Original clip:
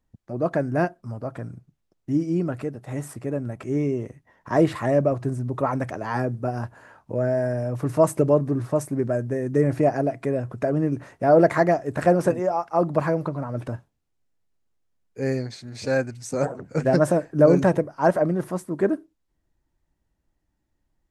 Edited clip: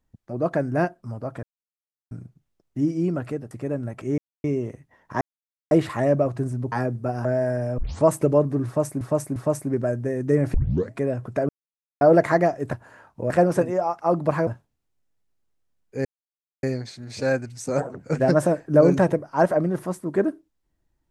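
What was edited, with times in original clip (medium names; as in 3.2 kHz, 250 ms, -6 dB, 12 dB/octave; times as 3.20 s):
1.43 s: insert silence 0.68 s
2.83–3.13 s: delete
3.80 s: insert silence 0.26 s
4.57 s: insert silence 0.50 s
5.58–6.11 s: delete
6.64–7.21 s: move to 11.99 s
7.74 s: tape start 0.26 s
8.62–8.97 s: loop, 3 plays
9.80 s: tape start 0.40 s
10.75–11.27 s: mute
13.16–13.70 s: delete
15.28 s: insert silence 0.58 s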